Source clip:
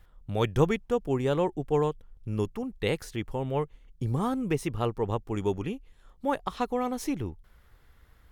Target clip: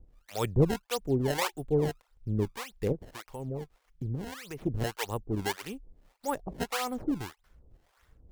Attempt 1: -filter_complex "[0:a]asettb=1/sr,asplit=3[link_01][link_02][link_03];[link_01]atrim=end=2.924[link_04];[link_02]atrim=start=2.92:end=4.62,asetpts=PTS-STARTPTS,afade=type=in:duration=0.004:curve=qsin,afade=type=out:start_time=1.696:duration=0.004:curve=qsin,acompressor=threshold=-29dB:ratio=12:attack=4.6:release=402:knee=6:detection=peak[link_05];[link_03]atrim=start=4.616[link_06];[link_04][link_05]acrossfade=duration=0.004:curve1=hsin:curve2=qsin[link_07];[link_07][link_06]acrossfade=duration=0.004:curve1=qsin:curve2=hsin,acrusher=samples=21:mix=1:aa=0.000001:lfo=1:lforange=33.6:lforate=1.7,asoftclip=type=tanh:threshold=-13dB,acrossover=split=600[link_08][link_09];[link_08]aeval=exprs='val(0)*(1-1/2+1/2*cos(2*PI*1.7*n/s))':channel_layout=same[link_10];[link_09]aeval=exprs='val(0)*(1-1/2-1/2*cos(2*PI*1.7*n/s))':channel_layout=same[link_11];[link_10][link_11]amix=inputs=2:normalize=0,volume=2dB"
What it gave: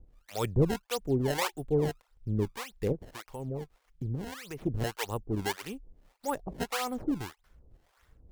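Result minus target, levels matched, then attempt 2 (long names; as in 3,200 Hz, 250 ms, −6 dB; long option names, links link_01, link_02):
soft clipping: distortion +19 dB
-filter_complex "[0:a]asettb=1/sr,asplit=3[link_01][link_02][link_03];[link_01]atrim=end=2.924[link_04];[link_02]atrim=start=2.92:end=4.62,asetpts=PTS-STARTPTS,afade=type=in:duration=0.004:curve=qsin,afade=type=out:start_time=1.696:duration=0.004:curve=qsin,acompressor=threshold=-29dB:ratio=12:attack=4.6:release=402:knee=6:detection=peak[link_05];[link_03]atrim=start=4.616[link_06];[link_04][link_05]acrossfade=duration=0.004:curve1=hsin:curve2=qsin[link_07];[link_07][link_06]acrossfade=duration=0.004:curve1=qsin:curve2=hsin,acrusher=samples=21:mix=1:aa=0.000001:lfo=1:lforange=33.6:lforate=1.7,asoftclip=type=tanh:threshold=-2dB,acrossover=split=600[link_08][link_09];[link_08]aeval=exprs='val(0)*(1-1/2+1/2*cos(2*PI*1.7*n/s))':channel_layout=same[link_10];[link_09]aeval=exprs='val(0)*(1-1/2-1/2*cos(2*PI*1.7*n/s))':channel_layout=same[link_11];[link_10][link_11]amix=inputs=2:normalize=0,volume=2dB"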